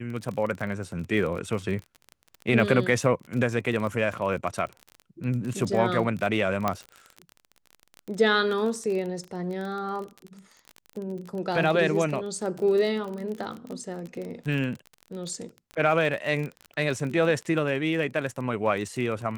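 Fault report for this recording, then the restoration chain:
crackle 29/s -31 dBFS
6.68 pop -11 dBFS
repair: de-click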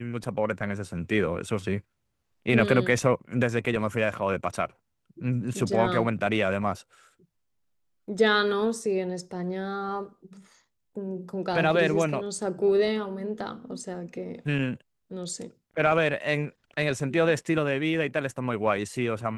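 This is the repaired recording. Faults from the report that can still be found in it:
none

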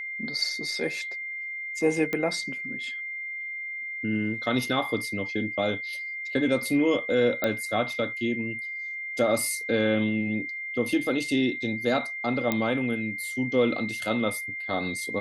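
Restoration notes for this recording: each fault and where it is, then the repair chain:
tone 2100 Hz -32 dBFS
2.13 pop -15 dBFS
7.44 pop -12 dBFS
12.52 pop -11 dBFS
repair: de-click; notch 2100 Hz, Q 30

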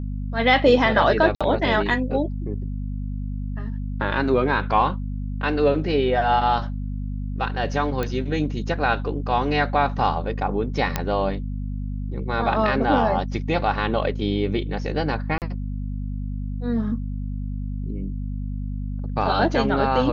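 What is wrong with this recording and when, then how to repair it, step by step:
hum 50 Hz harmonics 5 -28 dBFS
1.35–1.41 gap 56 ms
8.03 pop -12 dBFS
10.96 pop -6 dBFS
15.38–15.42 gap 38 ms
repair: de-click; de-hum 50 Hz, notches 5; interpolate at 1.35, 56 ms; interpolate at 15.38, 38 ms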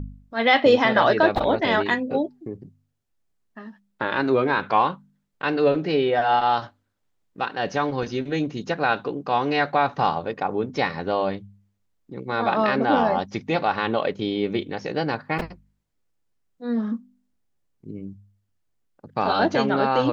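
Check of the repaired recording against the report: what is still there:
none

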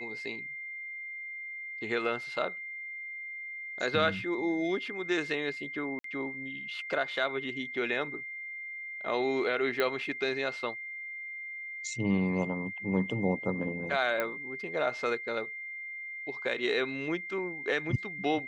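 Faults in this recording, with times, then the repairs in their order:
tone 2100 Hz -38 dBFS
5.99–6.04 gap 53 ms
9.8 pop -16 dBFS
14.2 pop -17 dBFS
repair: de-click; notch 2100 Hz, Q 30; interpolate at 5.99, 53 ms

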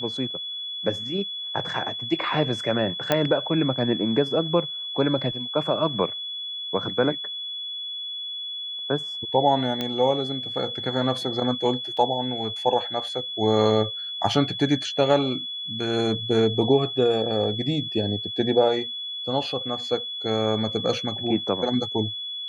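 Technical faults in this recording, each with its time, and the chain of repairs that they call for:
tone 3400 Hz -30 dBFS
3.12 pop -6 dBFS
9.81 pop -13 dBFS
11.97 gap 4.3 ms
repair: de-click; notch 3400 Hz, Q 30; interpolate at 11.97, 4.3 ms

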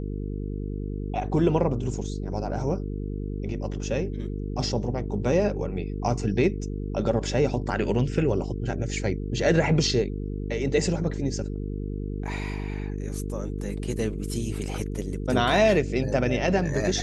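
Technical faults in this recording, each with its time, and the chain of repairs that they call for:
buzz 50 Hz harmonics 9 -31 dBFS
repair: de-hum 50 Hz, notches 9

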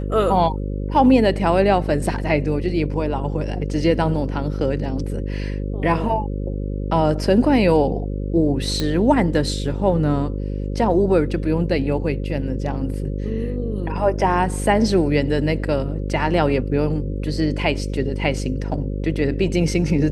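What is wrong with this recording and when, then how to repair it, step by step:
buzz 50 Hz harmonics 11 -25 dBFS
8.8 pop -9 dBFS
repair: de-click; de-hum 50 Hz, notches 11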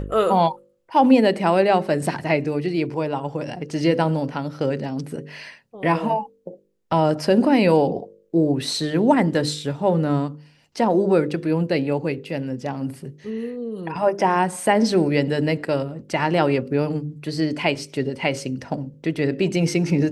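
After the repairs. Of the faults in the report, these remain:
none

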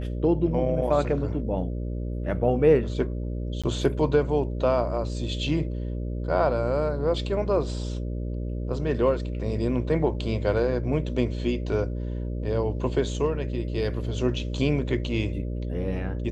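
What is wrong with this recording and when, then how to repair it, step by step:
buzz 60 Hz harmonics 10 -30 dBFS
3.62–3.64 gap 16 ms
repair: de-hum 60 Hz, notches 10; interpolate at 3.62, 16 ms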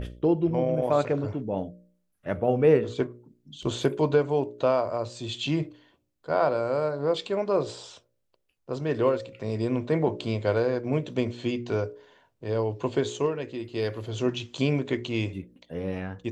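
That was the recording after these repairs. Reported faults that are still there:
none

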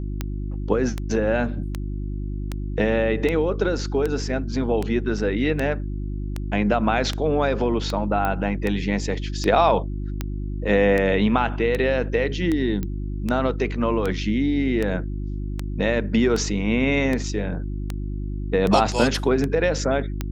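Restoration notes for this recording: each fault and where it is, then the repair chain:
hum 50 Hz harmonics 7 -28 dBFS
tick 78 rpm -12 dBFS
8.25 pop -12 dBFS
12.83 pop -15 dBFS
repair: de-click; de-hum 50 Hz, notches 7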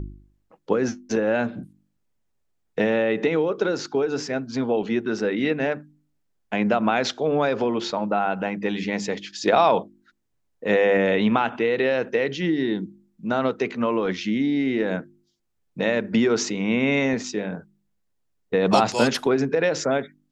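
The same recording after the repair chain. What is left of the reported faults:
none

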